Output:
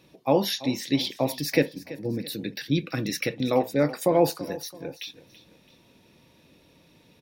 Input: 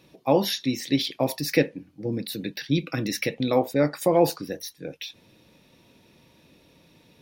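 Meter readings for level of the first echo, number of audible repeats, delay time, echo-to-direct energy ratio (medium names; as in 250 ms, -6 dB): -17.0 dB, 2, 333 ms, -16.5 dB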